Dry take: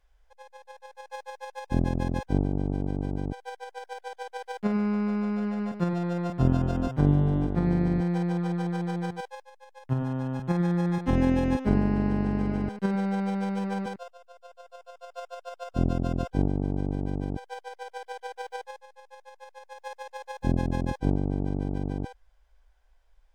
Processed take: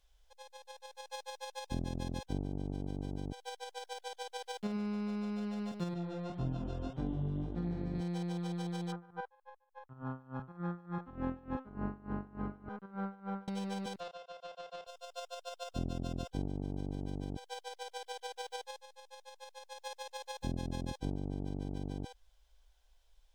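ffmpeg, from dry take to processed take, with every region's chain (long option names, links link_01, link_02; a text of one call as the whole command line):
ffmpeg -i in.wav -filter_complex "[0:a]asettb=1/sr,asplit=3[link_01][link_02][link_03];[link_01]atrim=end=5.944[link_04];[link_02]atrim=start=5.94:end=7.95,asetpts=PTS-STARTPTS,afade=type=in:duration=0.004:curve=qsin,afade=type=out:start_time=2.006:duration=0.004:curve=qsin,aemphasis=mode=reproduction:type=75fm,bandreject=frequency=184.6:width_type=h:width=4,bandreject=frequency=369.2:width_type=h:width=4,bandreject=frequency=553.8:width_type=h:width=4,bandreject=frequency=738.4:width_type=h:width=4,bandreject=frequency=923:width_type=h:width=4,bandreject=frequency=1107.6:width_type=h:width=4,bandreject=frequency=1292.2:width_type=h:width=4,bandreject=frequency=1476.8:width_type=h:width=4,bandreject=frequency=1661.4:width_type=h:width=4,bandreject=frequency=1846:width_type=h:width=4,bandreject=frequency=2030.6:width_type=h:width=4,bandreject=frequency=2215.2:width_type=h:width=4,bandreject=frequency=2399.8:width_type=h:width=4,bandreject=frequency=2584.4:width_type=h:width=4,bandreject=frequency=2769:width_type=h:width=4,bandreject=frequency=2953.6:width_type=h:width=4,bandreject=frequency=3138.2:width_type=h:width=4,bandreject=frequency=3322.8:width_type=h:width=4,bandreject=frequency=3507.4:width_type=h:width=4,bandreject=frequency=3692:width_type=h:width=4,bandreject=frequency=3876.6:width_type=h:width=4,bandreject=frequency=4061.2:width_type=h:width=4,bandreject=frequency=4245.8:width_type=h:width=4,bandreject=frequency=4430.4:width_type=h:width=4,bandreject=frequency=4615:width_type=h:width=4,flanger=delay=16.5:depth=4.8:speed=1.8[link_05];[link_03]atrim=start=7.946[link_06];[link_04][link_05]acrossfade=duration=0.004:curve1=hsin:curve2=qsin[link_07];[link_07][link_06]acrossfade=duration=0.004:curve1=qsin:curve2=hsin,asettb=1/sr,asplit=3[link_08][link_09][link_10];[link_08]atrim=end=8.924[link_11];[link_09]atrim=start=8.92:end=13.48,asetpts=PTS-STARTPTS,afade=type=in:duration=0.004:curve=qsin,afade=type=out:start_time=4.556:duration=0.004:curve=qsin,lowpass=frequency=1300:width_type=q:width=5.7,aeval=exprs='val(0)*pow(10,-25*(0.5-0.5*cos(2*PI*3.4*n/s))/20)':channel_layout=same[link_12];[link_10]atrim=start=13.476[link_13];[link_11][link_12]acrossfade=duration=0.004:curve1=hsin:curve2=qsin[link_14];[link_14][link_13]acrossfade=duration=0.004:curve1=qsin:curve2=hsin,asettb=1/sr,asplit=3[link_15][link_16][link_17];[link_15]atrim=end=14.004[link_18];[link_16]atrim=start=14:end=14.87,asetpts=PTS-STARTPTS,afade=type=in:duration=0.004:curve=qsin,afade=type=out:start_time=0.866:duration=0.004:curve=qsin,highpass=150,lowpass=5800,asplit=2[link_19][link_20];[link_20]highpass=frequency=720:poles=1,volume=18dB,asoftclip=type=tanh:threshold=-29dB[link_21];[link_19][link_21]amix=inputs=2:normalize=0,lowpass=frequency=1600:poles=1,volume=-6dB,asplit=2[link_22][link_23];[link_23]adelay=31,volume=-8dB[link_24];[link_22][link_24]amix=inputs=2:normalize=0,atrim=end_sample=38367[link_25];[link_17]atrim=start=14.866[link_26];[link_18][link_25]acrossfade=duration=0.004:curve1=hsin:curve2=qsin[link_27];[link_27][link_26]acrossfade=duration=0.004:curve1=qsin:curve2=hsin,highshelf=frequency=2600:width_type=q:width=1.5:gain=8.5,bandreject=frequency=4800:width=21,acompressor=threshold=-34dB:ratio=2,volume=-4.5dB" out.wav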